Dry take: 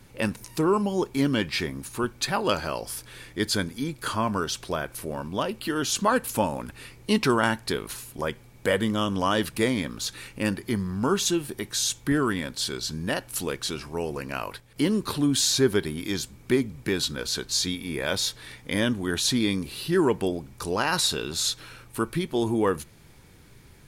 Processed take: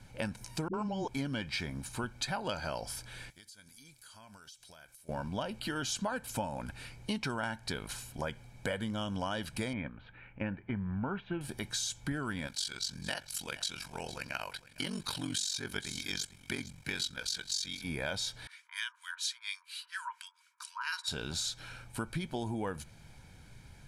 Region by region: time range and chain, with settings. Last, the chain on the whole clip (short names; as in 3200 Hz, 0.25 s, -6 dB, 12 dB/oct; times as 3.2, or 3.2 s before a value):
0.68–1.08 LPF 6900 Hz 24 dB/oct + dispersion highs, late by 57 ms, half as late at 310 Hz
3.3–5.09 pre-emphasis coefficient 0.9 + compressor 10:1, threshold -46 dBFS
9.73–11.41 steep low-pass 2600 Hz + gate -34 dBFS, range -7 dB
12.47–17.84 tilt shelf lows -6.5 dB, about 1100 Hz + ring modulator 23 Hz + echo 0.456 s -18.5 dB
18.47–21.08 harmonic tremolo 4.3 Hz, depth 100%, crossover 1200 Hz + brick-wall FIR band-pass 910–13000 Hz
whole clip: comb 1.3 ms, depth 53%; compressor, threshold -28 dBFS; LPF 9600 Hz 12 dB/oct; gain -4 dB